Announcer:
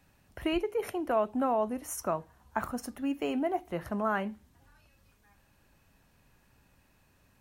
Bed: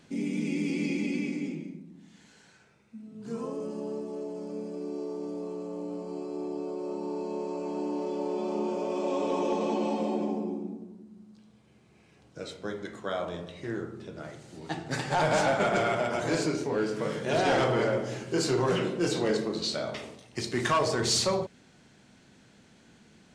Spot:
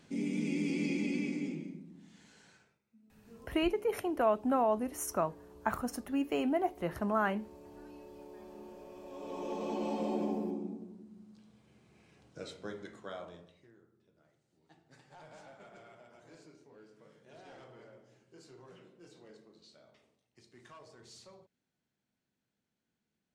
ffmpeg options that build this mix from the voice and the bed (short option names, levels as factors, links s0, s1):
-filter_complex "[0:a]adelay=3100,volume=0.944[s0];[1:a]volume=4.22,afade=t=out:st=2.53:d=0.27:silence=0.158489,afade=t=in:st=9.09:d=1.15:silence=0.158489,afade=t=out:st=12.13:d=1.58:silence=0.0530884[s1];[s0][s1]amix=inputs=2:normalize=0"